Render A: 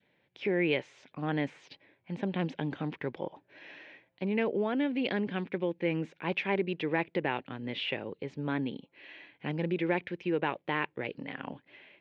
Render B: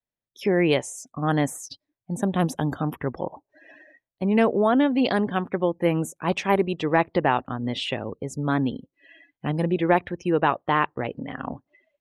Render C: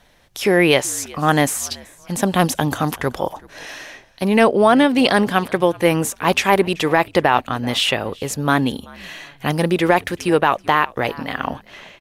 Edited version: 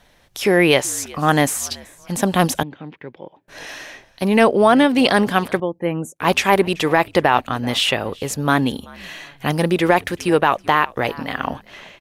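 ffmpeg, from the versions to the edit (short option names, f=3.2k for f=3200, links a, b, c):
-filter_complex "[2:a]asplit=3[a][b][c];[a]atrim=end=2.632[d];[0:a]atrim=start=2.628:end=3.482[e];[b]atrim=start=3.478:end=5.602[f];[1:a]atrim=start=5.598:end=6.202[g];[c]atrim=start=6.198[h];[d][e]acrossfade=d=0.004:c1=hsin:c2=hsin[i];[i][f]acrossfade=d=0.004:c1=hsin:c2=hsin[j];[j][g]acrossfade=d=0.004:c1=hsin:c2=hsin[k];[k][h]acrossfade=d=0.004:c1=hsin:c2=hsin"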